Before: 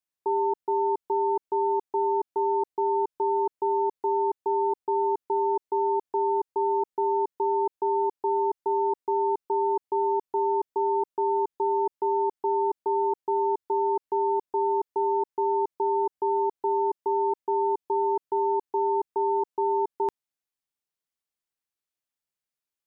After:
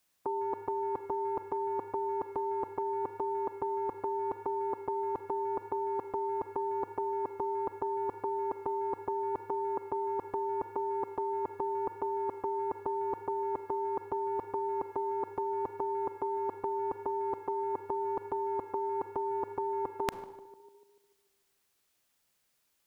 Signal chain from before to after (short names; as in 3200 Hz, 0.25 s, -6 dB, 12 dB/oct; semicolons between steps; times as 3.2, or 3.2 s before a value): on a send: tape echo 0.148 s, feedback 58%, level -21.5 dB, low-pass 1000 Hz; on the sum: Schroeder reverb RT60 0.83 s, combs from 33 ms, DRR 18.5 dB; spectral compressor 2:1; gain +3 dB